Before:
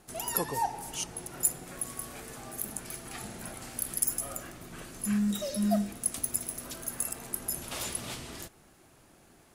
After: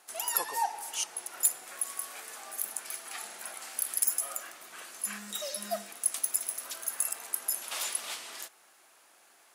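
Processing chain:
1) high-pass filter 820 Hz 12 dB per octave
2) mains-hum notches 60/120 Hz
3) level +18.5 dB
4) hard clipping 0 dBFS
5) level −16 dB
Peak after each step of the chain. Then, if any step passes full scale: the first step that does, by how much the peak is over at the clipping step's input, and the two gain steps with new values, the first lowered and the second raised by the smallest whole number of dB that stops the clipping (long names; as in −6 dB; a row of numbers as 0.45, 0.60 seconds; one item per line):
−9.0, −9.0, +9.5, 0.0, −16.0 dBFS
step 3, 9.5 dB
step 3 +8.5 dB, step 5 −6 dB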